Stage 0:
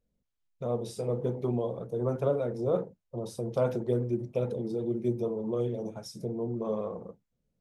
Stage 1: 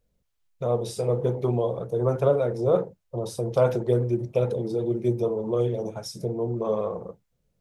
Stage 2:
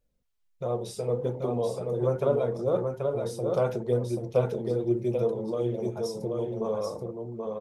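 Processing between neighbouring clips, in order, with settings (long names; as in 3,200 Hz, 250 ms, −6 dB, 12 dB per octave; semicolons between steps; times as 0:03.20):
parametric band 240 Hz −7.5 dB 0.74 octaves; level +7.5 dB
flanger 0.72 Hz, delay 3.3 ms, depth 2.5 ms, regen +64%; on a send: single-tap delay 782 ms −4 dB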